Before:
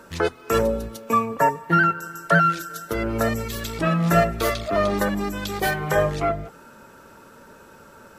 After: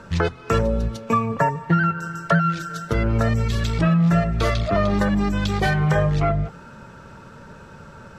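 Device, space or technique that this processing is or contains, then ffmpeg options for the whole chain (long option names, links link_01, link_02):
jukebox: -af "lowpass=5700,lowshelf=frequency=210:width_type=q:width=1.5:gain=8,acompressor=threshold=-19dB:ratio=5,volume=3.5dB"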